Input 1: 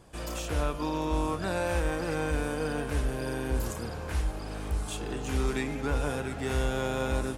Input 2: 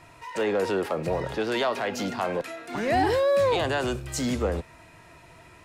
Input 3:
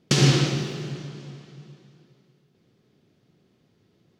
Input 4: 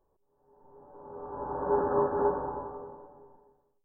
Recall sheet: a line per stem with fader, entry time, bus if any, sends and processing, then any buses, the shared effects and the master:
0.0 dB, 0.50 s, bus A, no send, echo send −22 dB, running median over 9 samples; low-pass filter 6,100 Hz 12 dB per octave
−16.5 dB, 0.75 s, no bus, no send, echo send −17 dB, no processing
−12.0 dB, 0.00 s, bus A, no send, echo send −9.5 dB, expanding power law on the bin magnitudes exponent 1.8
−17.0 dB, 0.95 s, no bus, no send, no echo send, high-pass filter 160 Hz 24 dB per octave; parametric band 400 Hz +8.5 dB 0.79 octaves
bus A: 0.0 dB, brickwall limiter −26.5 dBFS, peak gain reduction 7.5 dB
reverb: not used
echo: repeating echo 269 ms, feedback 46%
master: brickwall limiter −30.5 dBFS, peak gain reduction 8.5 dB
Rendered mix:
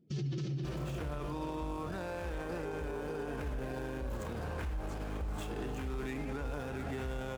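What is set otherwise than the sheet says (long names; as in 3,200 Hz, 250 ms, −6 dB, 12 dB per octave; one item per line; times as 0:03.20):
stem 1: missing low-pass filter 6,100 Hz 12 dB per octave
stem 2 −16.5 dB → −26.5 dB
stem 3 −12.0 dB → −3.5 dB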